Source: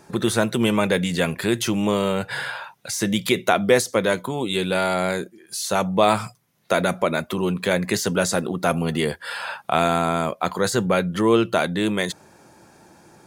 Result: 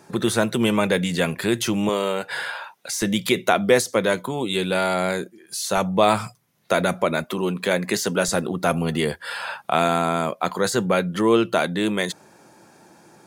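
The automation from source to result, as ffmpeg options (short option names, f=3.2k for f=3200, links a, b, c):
-af "asetnsamples=n=441:p=0,asendcmd='1.89 highpass f 290;3.02 highpass f 100;5.77 highpass f 50;7.24 highpass f 170;8.28 highpass f 46;9.66 highpass f 130',highpass=92"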